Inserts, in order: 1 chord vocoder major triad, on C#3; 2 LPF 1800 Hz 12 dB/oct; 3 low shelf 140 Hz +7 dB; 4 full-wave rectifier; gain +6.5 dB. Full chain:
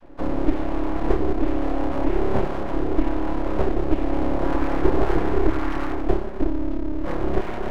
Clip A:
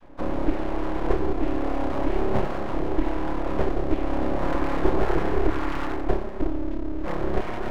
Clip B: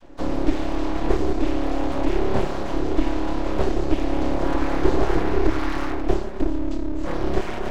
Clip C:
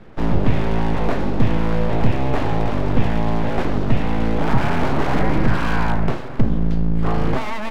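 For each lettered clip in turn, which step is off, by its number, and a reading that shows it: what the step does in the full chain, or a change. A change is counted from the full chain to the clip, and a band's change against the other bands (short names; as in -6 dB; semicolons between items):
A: 3, 2 kHz band +2.0 dB; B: 2, 2 kHz band +1.5 dB; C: 1, 125 Hz band +6.5 dB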